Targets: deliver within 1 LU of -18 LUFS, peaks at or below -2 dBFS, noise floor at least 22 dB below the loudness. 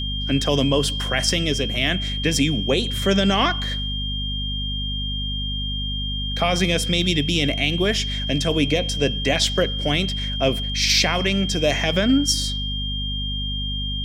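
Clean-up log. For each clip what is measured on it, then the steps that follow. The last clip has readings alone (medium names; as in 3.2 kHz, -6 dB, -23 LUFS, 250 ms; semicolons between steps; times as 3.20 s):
hum 50 Hz; highest harmonic 250 Hz; hum level -25 dBFS; steady tone 3.2 kHz; tone level -27 dBFS; loudness -21.0 LUFS; peak level -5.5 dBFS; loudness target -18.0 LUFS
-> de-hum 50 Hz, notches 5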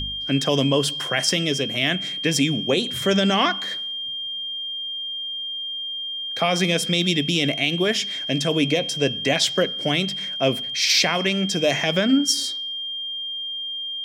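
hum not found; steady tone 3.2 kHz; tone level -27 dBFS
-> band-stop 3.2 kHz, Q 30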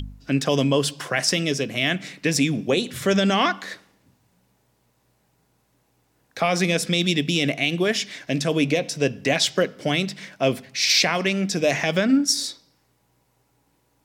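steady tone not found; loudness -22.0 LUFS; peak level -6.5 dBFS; loudness target -18.0 LUFS
-> trim +4 dB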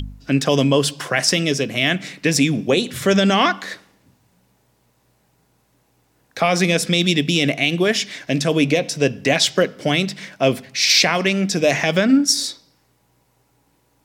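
loudness -18.0 LUFS; peak level -2.5 dBFS; noise floor -63 dBFS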